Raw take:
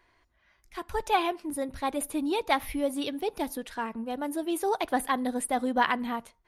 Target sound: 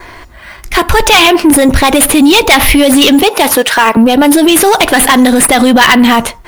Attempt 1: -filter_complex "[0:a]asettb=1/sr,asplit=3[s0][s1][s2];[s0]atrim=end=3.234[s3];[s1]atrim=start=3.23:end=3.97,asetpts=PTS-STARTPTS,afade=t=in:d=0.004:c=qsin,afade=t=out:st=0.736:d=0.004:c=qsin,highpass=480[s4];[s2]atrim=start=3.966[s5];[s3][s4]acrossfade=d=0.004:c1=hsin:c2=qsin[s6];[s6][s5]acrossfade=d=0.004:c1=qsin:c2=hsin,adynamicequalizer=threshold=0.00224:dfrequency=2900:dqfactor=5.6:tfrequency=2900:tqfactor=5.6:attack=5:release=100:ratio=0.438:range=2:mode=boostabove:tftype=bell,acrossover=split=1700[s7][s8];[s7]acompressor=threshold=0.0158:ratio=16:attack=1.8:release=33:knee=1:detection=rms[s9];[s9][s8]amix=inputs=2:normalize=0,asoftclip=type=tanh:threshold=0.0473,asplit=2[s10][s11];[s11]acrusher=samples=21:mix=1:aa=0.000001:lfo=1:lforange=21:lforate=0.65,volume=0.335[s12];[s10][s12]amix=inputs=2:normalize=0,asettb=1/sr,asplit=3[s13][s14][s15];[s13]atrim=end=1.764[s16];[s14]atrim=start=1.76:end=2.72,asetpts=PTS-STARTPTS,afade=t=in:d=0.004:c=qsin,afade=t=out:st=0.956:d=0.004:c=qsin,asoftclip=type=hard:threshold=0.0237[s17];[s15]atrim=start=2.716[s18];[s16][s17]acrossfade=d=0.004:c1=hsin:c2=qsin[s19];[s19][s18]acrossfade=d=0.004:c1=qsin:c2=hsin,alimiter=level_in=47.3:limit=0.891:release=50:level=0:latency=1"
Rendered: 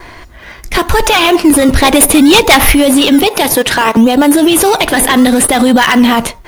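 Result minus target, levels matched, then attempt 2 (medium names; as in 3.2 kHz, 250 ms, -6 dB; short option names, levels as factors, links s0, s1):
decimation with a swept rate: distortion +9 dB; saturation: distortion -6 dB
-filter_complex "[0:a]asettb=1/sr,asplit=3[s0][s1][s2];[s0]atrim=end=3.234[s3];[s1]atrim=start=3.23:end=3.97,asetpts=PTS-STARTPTS,afade=t=in:d=0.004:c=qsin,afade=t=out:st=0.736:d=0.004:c=qsin,highpass=480[s4];[s2]atrim=start=3.966[s5];[s3][s4]acrossfade=d=0.004:c1=hsin:c2=qsin[s6];[s6][s5]acrossfade=d=0.004:c1=qsin:c2=hsin,adynamicequalizer=threshold=0.00224:dfrequency=2900:dqfactor=5.6:tfrequency=2900:tqfactor=5.6:attack=5:release=100:ratio=0.438:range=2:mode=boostabove:tftype=bell,acrossover=split=1700[s7][s8];[s7]acompressor=threshold=0.0158:ratio=16:attack=1.8:release=33:knee=1:detection=rms[s9];[s9][s8]amix=inputs=2:normalize=0,asoftclip=type=tanh:threshold=0.0188,asplit=2[s10][s11];[s11]acrusher=samples=5:mix=1:aa=0.000001:lfo=1:lforange=5:lforate=0.65,volume=0.335[s12];[s10][s12]amix=inputs=2:normalize=0,asettb=1/sr,asplit=3[s13][s14][s15];[s13]atrim=end=1.764[s16];[s14]atrim=start=1.76:end=2.72,asetpts=PTS-STARTPTS,afade=t=in:d=0.004:c=qsin,afade=t=out:st=0.956:d=0.004:c=qsin,asoftclip=type=hard:threshold=0.0237[s17];[s15]atrim=start=2.716[s18];[s16][s17]acrossfade=d=0.004:c1=hsin:c2=qsin[s19];[s19][s18]acrossfade=d=0.004:c1=qsin:c2=hsin,alimiter=level_in=47.3:limit=0.891:release=50:level=0:latency=1"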